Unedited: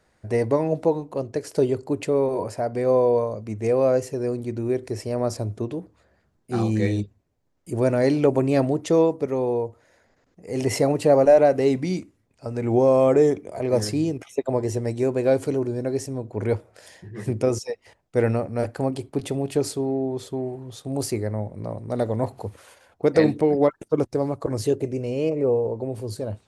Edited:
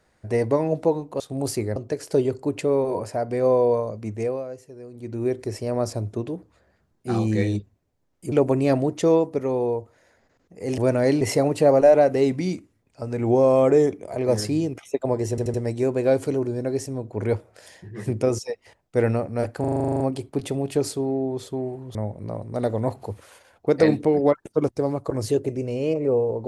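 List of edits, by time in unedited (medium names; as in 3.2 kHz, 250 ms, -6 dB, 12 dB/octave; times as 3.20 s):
3.55–4.68 s: dip -15 dB, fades 0.33 s
7.76–8.19 s: move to 10.65 s
14.74 s: stutter 0.08 s, 4 plays
18.80 s: stutter 0.04 s, 11 plays
20.75–21.31 s: move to 1.20 s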